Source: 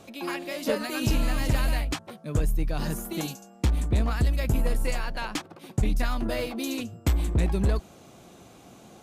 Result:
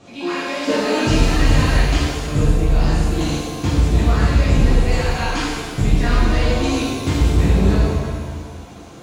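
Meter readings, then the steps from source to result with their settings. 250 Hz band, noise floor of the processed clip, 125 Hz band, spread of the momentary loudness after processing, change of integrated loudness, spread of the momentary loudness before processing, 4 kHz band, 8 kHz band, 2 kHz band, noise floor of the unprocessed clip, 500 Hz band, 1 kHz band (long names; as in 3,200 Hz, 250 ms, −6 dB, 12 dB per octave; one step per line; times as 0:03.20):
+11.0 dB, −37 dBFS, +10.5 dB, 8 LU, +10.0 dB, 8 LU, +10.5 dB, +8.0 dB, +10.5 dB, −52 dBFS, +10.0 dB, +11.5 dB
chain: low-pass filter 7,200 Hz 24 dB per octave
reverb with rising layers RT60 1.6 s, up +7 semitones, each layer −8 dB, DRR −10 dB
level −1 dB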